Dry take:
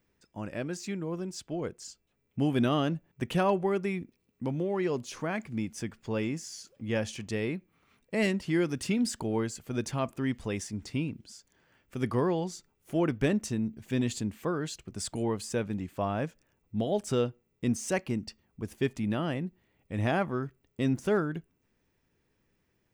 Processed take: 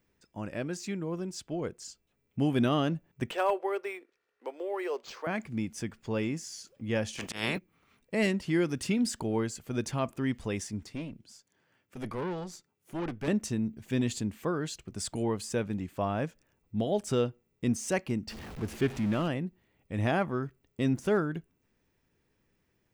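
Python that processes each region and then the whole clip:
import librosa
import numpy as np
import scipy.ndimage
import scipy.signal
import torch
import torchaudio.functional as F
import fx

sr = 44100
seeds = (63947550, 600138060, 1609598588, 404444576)

y = fx.chain(x, sr, fx.steep_highpass(hz=400.0, slope=36),
    fx.clip_hard(threshold_db=-18.5),
    fx.resample_linear(factor=4), at=(3.31, 5.27))
y = fx.spec_clip(y, sr, under_db=29, at=(7.17, 7.57), fade=0.02)
y = fx.peak_eq(y, sr, hz=190.0, db=8.0, octaves=1.5, at=(7.17, 7.57), fade=0.02)
y = fx.auto_swell(y, sr, attack_ms=135.0, at=(7.17, 7.57), fade=0.02)
y = fx.chain(y, sr, fx.highpass(hz=88.0, slope=24),
    fx.tube_stage(drive_db=30.0, bias=0.75), at=(10.83, 13.28))
y = fx.chain(y, sr, fx.zero_step(step_db=-36.5),
    fx.high_shelf(hz=6000.0, db=-9.0),
    fx.doppler_dist(depth_ms=0.11), at=(18.28, 19.28))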